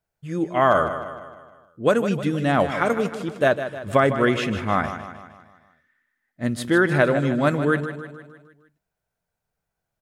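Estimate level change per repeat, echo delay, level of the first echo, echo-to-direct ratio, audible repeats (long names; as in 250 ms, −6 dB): −5.5 dB, 154 ms, −10.5 dB, −9.0 dB, 5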